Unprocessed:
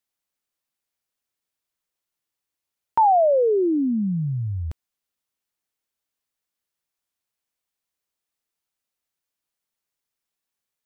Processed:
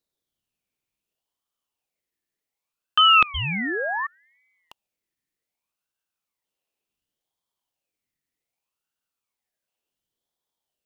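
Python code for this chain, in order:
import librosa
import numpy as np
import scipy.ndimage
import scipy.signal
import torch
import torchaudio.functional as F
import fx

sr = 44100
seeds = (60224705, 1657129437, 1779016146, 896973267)

y = fx.filter_lfo_highpass(x, sr, shape='saw_down', hz=0.31, low_hz=470.0, high_hz=1700.0, q=4.6)
y = fx.spec_paint(y, sr, seeds[0], shape='fall', start_s=3.34, length_s=0.73, low_hz=320.0, high_hz=1600.0, level_db=-23.0)
y = fx.ring_lfo(y, sr, carrier_hz=1600.0, swing_pct=35, hz=0.67)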